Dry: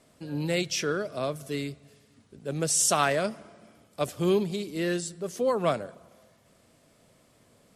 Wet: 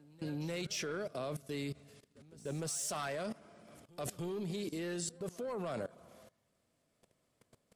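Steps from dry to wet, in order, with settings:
soft clipping −21 dBFS, distortion −13 dB
output level in coarse steps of 20 dB
echo ahead of the sound 300 ms −21.5 dB
level +1.5 dB

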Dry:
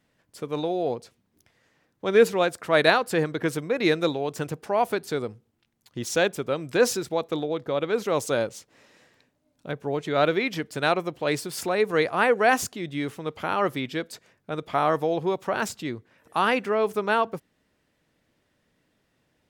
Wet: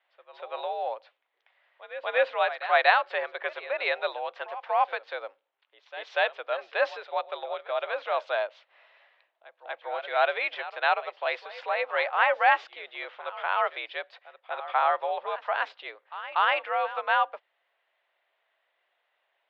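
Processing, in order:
echo ahead of the sound 240 ms −15 dB
single-sideband voice off tune +72 Hz 560–3,500 Hz

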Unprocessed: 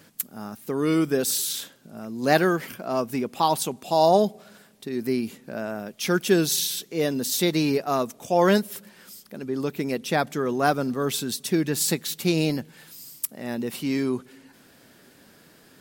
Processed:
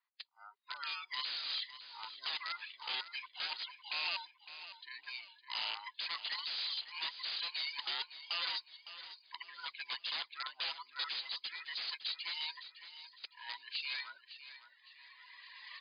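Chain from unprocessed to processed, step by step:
frequency inversion band by band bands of 500 Hz
camcorder AGC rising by 10 dB per second
noise reduction from a noise print of the clip's start 17 dB
high-pass filter 840 Hz 24 dB per octave
reverb reduction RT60 1.3 s
low-pass that shuts in the quiet parts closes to 1,400 Hz, open at −24 dBFS
parametric band 4,300 Hz +4.5 dB 0.32 octaves
downward compressor 8 to 1, threshold −26 dBFS, peak gain reduction 10 dB
wrap-around overflow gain 25.5 dB
first difference
repeating echo 559 ms, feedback 40%, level −13 dB
level +4.5 dB
MP3 64 kbit/s 11,025 Hz

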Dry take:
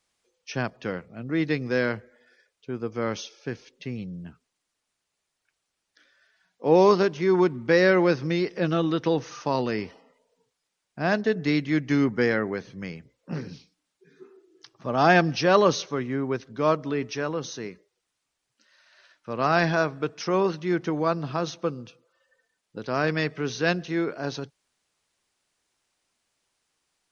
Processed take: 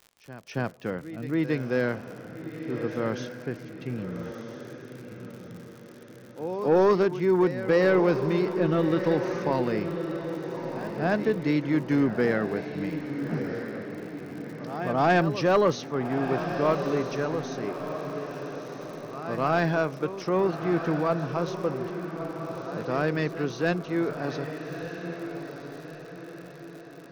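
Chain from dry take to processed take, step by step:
high-shelf EQ 2,400 Hz −9.5 dB
echo ahead of the sound 276 ms −14.5 dB
soft clipping −12.5 dBFS, distortion −18 dB
on a send: feedback delay with all-pass diffusion 1,298 ms, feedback 45%, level −8 dB
on the sum: surface crackle 100 per second −39 dBFS

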